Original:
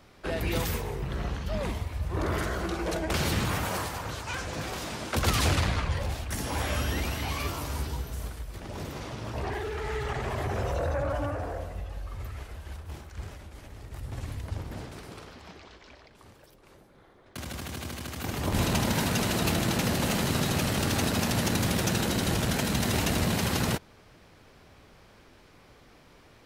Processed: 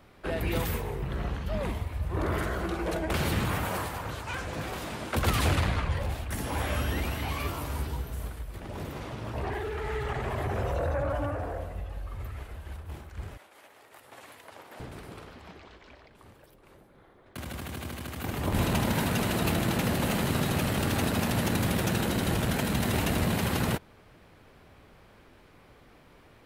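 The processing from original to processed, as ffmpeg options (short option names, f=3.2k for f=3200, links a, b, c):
-filter_complex "[0:a]asettb=1/sr,asplit=3[a][b][c];[a]atrim=end=13.374[d];[b]atrim=start=13.37:end=14.8,asetpts=PTS-STARTPTS,afade=t=in:d=0.004:c=qsin,afade=t=out:st=1.426:d=0.004:c=qsin,highpass=570[e];[c]atrim=start=14.796[f];[d][e]acrossfade=d=0.004:c1=hsin:c2=qsin[g];[g][f]acrossfade=d=0.004:c1=qsin:c2=hsin,equalizer=f=5.7k:t=o:w=1.1:g=-7.5"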